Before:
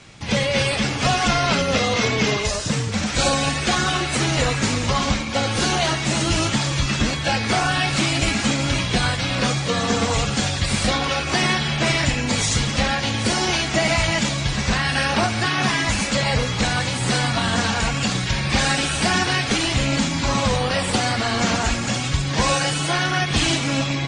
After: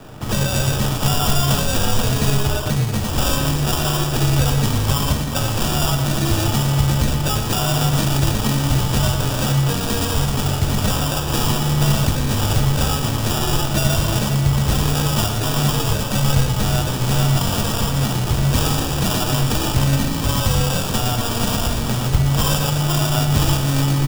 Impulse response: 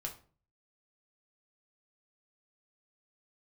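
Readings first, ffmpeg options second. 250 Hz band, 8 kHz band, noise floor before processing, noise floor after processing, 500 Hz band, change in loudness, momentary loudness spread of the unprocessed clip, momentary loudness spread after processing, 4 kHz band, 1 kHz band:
+1.5 dB, +1.0 dB, −25 dBFS, −22 dBFS, −1.0 dB, +1.5 dB, 3 LU, 3 LU, −1.5 dB, −1.5 dB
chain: -filter_complex "[0:a]acrusher=samples=21:mix=1:aa=0.000001,acrossover=split=130|3000[link_01][link_02][link_03];[link_02]acompressor=threshold=-38dB:ratio=2[link_04];[link_01][link_04][link_03]amix=inputs=3:normalize=0,asplit=2[link_05][link_06];[link_06]adelay=116.6,volume=-8dB,highshelf=frequency=4000:gain=-2.62[link_07];[link_05][link_07]amix=inputs=2:normalize=0,asplit=2[link_08][link_09];[1:a]atrim=start_sample=2205[link_10];[link_09][link_10]afir=irnorm=-1:irlink=0,volume=0dB[link_11];[link_08][link_11]amix=inputs=2:normalize=0,volume=1.5dB"

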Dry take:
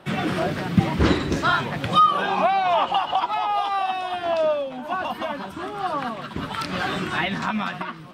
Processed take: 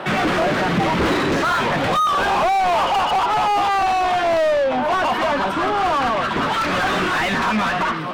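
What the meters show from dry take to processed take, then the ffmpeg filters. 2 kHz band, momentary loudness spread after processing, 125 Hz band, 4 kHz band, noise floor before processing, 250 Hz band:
+7.0 dB, 3 LU, −0.5 dB, +4.5 dB, −37 dBFS, +3.0 dB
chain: -filter_complex "[0:a]asplit=2[link_01][link_02];[link_02]highpass=frequency=720:poles=1,volume=36dB,asoftclip=type=tanh:threshold=-4.5dB[link_03];[link_01][link_03]amix=inputs=2:normalize=0,lowpass=frequency=1500:poles=1,volume=-6dB,volume=-5.5dB"

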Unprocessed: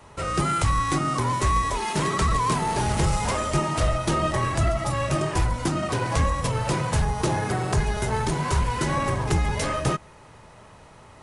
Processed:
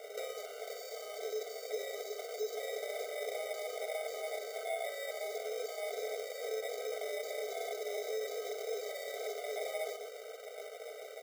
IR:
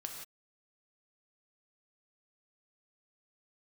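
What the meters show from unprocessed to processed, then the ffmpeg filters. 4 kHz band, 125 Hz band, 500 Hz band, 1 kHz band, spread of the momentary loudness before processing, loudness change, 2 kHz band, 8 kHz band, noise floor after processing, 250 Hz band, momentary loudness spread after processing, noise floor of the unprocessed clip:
−12.0 dB, below −40 dB, −7.0 dB, −22.0 dB, 3 LU, −15.5 dB, −14.0 dB, −15.0 dB, −48 dBFS, below −30 dB, 6 LU, −49 dBFS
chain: -filter_complex "[0:a]volume=22dB,asoftclip=hard,volume=-22dB,asplit=4[link_01][link_02][link_03][link_04];[link_02]adelay=110,afreqshift=71,volume=-17dB[link_05];[link_03]adelay=220,afreqshift=142,volume=-27.2dB[link_06];[link_04]adelay=330,afreqshift=213,volume=-37.3dB[link_07];[link_01][link_05][link_06][link_07]amix=inputs=4:normalize=0,acrossover=split=170|3000[link_08][link_09][link_10];[link_08]acompressor=threshold=-39dB:ratio=6[link_11];[link_11][link_09][link_10]amix=inputs=3:normalize=0,aeval=exprs='val(0)+0.00501*(sin(2*PI*50*n/s)+sin(2*PI*2*50*n/s)/2+sin(2*PI*3*50*n/s)/3+sin(2*PI*4*50*n/s)/4+sin(2*PI*5*50*n/s)/5)':channel_layout=same,alimiter=limit=-24dB:level=0:latency=1:release=37,equalizer=frequency=420:width_type=o:width=1.4:gain=8,acrusher=samples=31:mix=1:aa=0.000001,acompressor=threshold=-34dB:ratio=10,aecho=1:1:4.6:0.44,afftfilt=real='re*eq(mod(floor(b*sr/1024/390),2),1)':imag='im*eq(mod(floor(b*sr/1024/390),2),1)':win_size=1024:overlap=0.75,volume=1.5dB"

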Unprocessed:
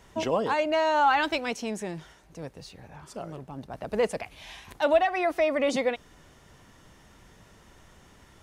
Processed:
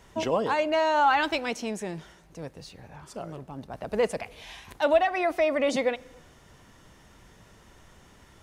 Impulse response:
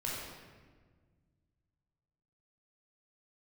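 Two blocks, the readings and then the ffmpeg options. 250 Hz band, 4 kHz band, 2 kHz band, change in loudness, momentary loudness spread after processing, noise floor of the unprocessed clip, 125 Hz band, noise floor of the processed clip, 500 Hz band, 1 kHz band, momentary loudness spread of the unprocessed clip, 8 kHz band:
0.0 dB, +0.5 dB, +0.5 dB, 0.0 dB, 20 LU, −56 dBFS, 0.0 dB, −56 dBFS, +0.5 dB, 0.0 dB, 20 LU, +0.5 dB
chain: -filter_complex "[0:a]asplit=2[link_01][link_02];[1:a]atrim=start_sample=2205,afade=type=out:start_time=0.41:duration=0.01,atrim=end_sample=18522,asetrate=42777,aresample=44100[link_03];[link_02][link_03]afir=irnorm=-1:irlink=0,volume=-25dB[link_04];[link_01][link_04]amix=inputs=2:normalize=0"

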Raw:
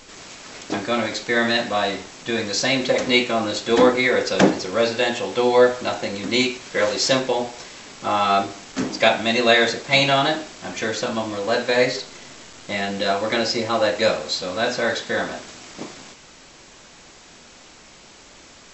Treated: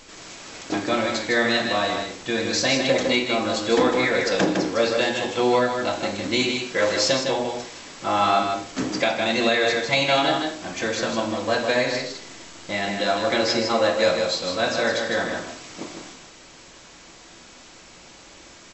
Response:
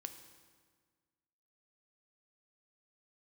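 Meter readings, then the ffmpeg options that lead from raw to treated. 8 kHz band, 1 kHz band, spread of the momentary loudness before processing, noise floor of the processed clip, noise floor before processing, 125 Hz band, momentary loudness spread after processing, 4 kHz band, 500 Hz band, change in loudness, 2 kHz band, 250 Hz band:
−0.5 dB, −1.0 dB, 16 LU, −47 dBFS, −47 dBFS, −2.0 dB, 13 LU, −1.5 dB, −2.0 dB, −1.5 dB, −1.5 dB, −1.5 dB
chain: -filter_complex "[0:a]aecho=1:1:156:0.531,alimiter=limit=-7.5dB:level=0:latency=1:release=405[link_01];[1:a]atrim=start_sample=2205,atrim=end_sample=4410[link_02];[link_01][link_02]afir=irnorm=-1:irlink=0,volume=3dB"

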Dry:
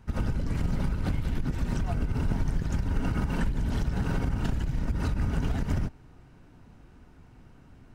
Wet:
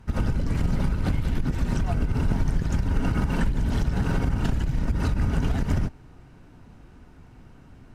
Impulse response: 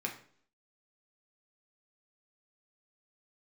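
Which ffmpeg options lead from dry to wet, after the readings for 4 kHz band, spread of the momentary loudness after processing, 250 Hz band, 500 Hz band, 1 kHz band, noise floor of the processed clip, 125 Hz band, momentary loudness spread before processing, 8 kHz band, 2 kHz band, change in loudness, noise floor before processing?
+4.0 dB, 2 LU, +4.0 dB, +4.0 dB, +4.0 dB, −50 dBFS, +4.0 dB, 2 LU, +4.0 dB, +4.0 dB, +4.0 dB, −54 dBFS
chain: -af "volume=4dB" -ar 32000 -c:a libvorbis -b:a 128k

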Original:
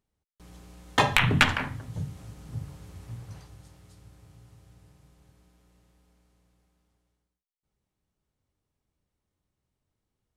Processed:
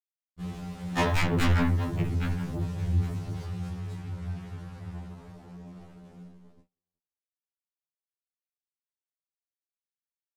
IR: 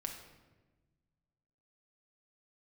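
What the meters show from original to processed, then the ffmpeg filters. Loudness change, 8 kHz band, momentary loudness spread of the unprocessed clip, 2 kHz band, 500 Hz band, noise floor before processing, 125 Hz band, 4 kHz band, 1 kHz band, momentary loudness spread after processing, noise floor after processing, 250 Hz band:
−4.0 dB, −4.5 dB, 21 LU, −7.5 dB, +1.5 dB, below −85 dBFS, +5.0 dB, −8.0 dB, −4.5 dB, 22 LU, below −85 dBFS, +5.0 dB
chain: -filter_complex "[0:a]asplit=2[link_01][link_02];[link_02]acompressor=threshold=-39dB:ratio=6,volume=0dB[link_03];[link_01][link_03]amix=inputs=2:normalize=0,lowpass=frequency=2600:poles=1,lowshelf=frequency=350:gain=9.5,asplit=2[link_04][link_05];[link_05]aecho=0:1:817|1634:0.112|0.0224[link_06];[link_04][link_06]amix=inputs=2:normalize=0,acrusher=bits=7:mix=0:aa=0.5,flanger=delay=18:depth=5.2:speed=1.5,acontrast=66,asoftclip=type=tanh:threshold=-22dB,agate=range=-33dB:threshold=-46dB:ratio=16:detection=peak,afftfilt=real='re*2*eq(mod(b,4),0)':imag='im*2*eq(mod(b,4),0)':win_size=2048:overlap=0.75,volume=1.5dB"

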